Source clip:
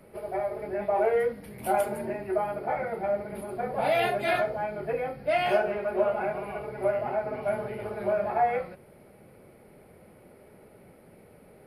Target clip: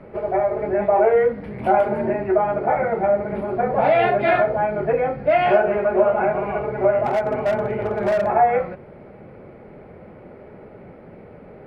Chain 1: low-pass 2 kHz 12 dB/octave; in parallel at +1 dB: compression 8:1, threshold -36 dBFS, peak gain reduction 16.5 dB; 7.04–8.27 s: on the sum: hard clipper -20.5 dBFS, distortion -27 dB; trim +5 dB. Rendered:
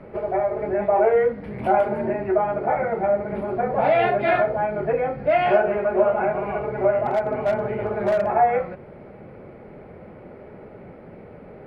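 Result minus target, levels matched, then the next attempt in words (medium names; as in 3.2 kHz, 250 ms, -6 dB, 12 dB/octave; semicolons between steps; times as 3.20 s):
compression: peak gain reduction +7 dB
low-pass 2 kHz 12 dB/octave; in parallel at +1 dB: compression 8:1, threshold -28 dBFS, peak gain reduction 9.5 dB; 7.04–8.27 s: on the sum: hard clipper -20.5 dBFS, distortion -22 dB; trim +5 dB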